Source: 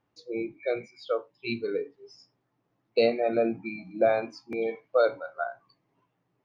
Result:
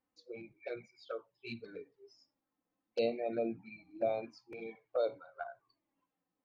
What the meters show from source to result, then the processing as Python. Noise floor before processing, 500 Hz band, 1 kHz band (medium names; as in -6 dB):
-77 dBFS, -10.5 dB, -11.5 dB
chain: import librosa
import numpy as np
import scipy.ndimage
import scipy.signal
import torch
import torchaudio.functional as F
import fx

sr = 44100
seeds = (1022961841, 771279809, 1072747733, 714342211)

y = fx.env_flanger(x, sr, rest_ms=3.9, full_db=-20.5)
y = y * librosa.db_to_amplitude(-8.5)